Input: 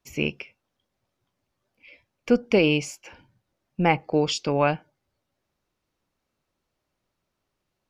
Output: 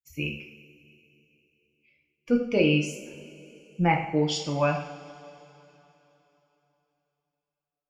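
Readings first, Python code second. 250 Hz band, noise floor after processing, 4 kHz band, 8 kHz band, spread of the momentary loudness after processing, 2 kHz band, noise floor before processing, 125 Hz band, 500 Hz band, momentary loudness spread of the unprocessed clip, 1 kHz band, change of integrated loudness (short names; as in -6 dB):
-1.0 dB, under -85 dBFS, -2.5 dB, -2.5 dB, 21 LU, -2.5 dB, -81 dBFS, +0.5 dB, -3.5 dB, 18 LU, -2.0 dB, -2.5 dB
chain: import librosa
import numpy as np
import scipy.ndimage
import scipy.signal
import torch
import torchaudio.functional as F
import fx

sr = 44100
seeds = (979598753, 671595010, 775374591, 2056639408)

y = fx.bin_expand(x, sr, power=1.5)
y = fx.rev_double_slope(y, sr, seeds[0], early_s=0.58, late_s=3.4, knee_db=-18, drr_db=0.0)
y = y * librosa.db_to_amplitude(-4.0)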